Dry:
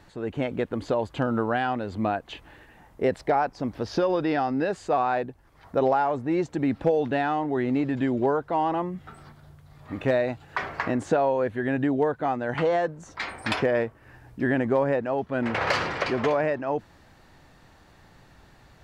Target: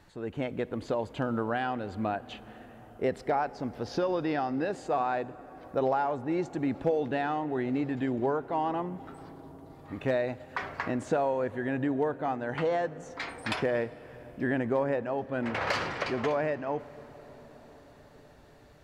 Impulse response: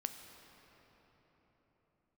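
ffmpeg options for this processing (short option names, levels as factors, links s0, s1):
-filter_complex "[0:a]asplit=2[s0][s1];[1:a]atrim=start_sample=2205,asetrate=26019,aresample=44100,highshelf=f=8100:g=10.5[s2];[s1][s2]afir=irnorm=-1:irlink=0,volume=0.299[s3];[s0][s3]amix=inputs=2:normalize=0,volume=0.422"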